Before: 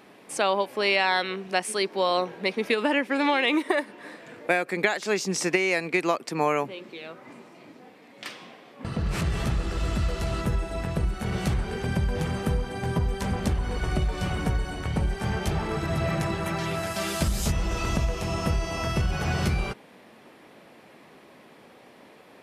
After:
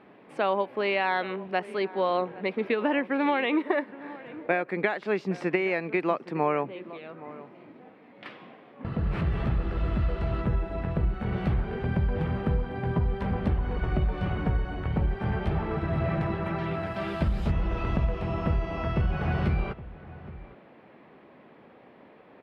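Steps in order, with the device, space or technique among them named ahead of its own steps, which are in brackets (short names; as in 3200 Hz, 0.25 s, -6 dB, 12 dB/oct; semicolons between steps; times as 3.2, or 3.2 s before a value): shout across a valley (air absorption 460 m; outdoor echo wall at 140 m, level -17 dB)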